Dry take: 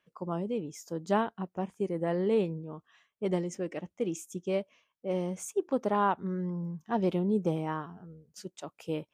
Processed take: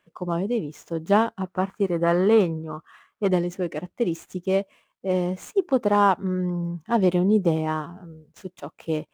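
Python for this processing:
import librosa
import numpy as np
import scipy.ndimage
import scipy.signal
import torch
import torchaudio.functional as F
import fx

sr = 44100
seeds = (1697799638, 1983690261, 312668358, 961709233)

y = scipy.signal.medfilt(x, 9)
y = fx.peak_eq(y, sr, hz=1300.0, db=13.0, octaves=0.74, at=(1.45, 3.29))
y = y * librosa.db_to_amplitude(8.0)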